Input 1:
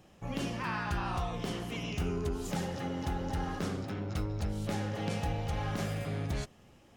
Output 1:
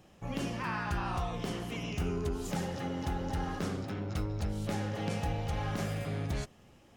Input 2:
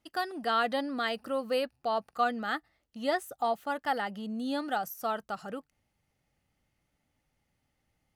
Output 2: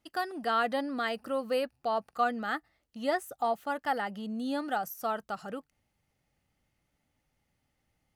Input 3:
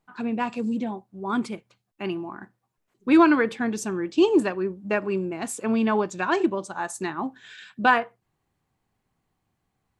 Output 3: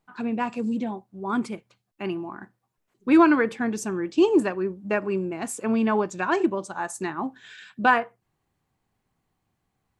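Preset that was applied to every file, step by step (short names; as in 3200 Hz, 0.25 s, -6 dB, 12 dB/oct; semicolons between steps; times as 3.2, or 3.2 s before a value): dynamic EQ 3700 Hz, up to -5 dB, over -48 dBFS, Q 1.9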